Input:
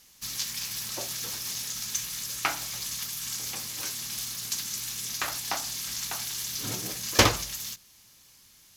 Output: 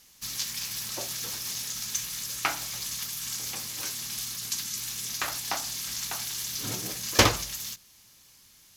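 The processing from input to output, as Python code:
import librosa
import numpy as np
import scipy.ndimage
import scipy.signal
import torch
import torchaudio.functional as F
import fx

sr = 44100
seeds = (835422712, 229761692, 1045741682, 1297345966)

y = fx.spec_gate(x, sr, threshold_db=-25, keep='strong', at=(4.12, 4.79))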